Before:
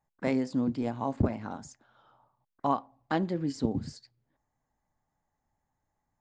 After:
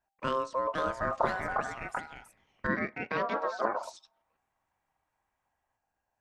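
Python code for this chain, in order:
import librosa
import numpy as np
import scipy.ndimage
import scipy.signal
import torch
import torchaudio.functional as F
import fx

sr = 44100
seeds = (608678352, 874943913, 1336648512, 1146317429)

y = x * np.sin(2.0 * np.pi * 790.0 * np.arange(len(x)) / sr)
y = fx.echo_pitch(y, sr, ms=547, semitones=3, count=2, db_per_echo=-3.0)
y = fx.cabinet(y, sr, low_hz=170.0, low_slope=12, high_hz=5100.0, hz=(210.0, 1300.0, 3000.0), db=(9, -3, -5), at=(2.67, 3.83))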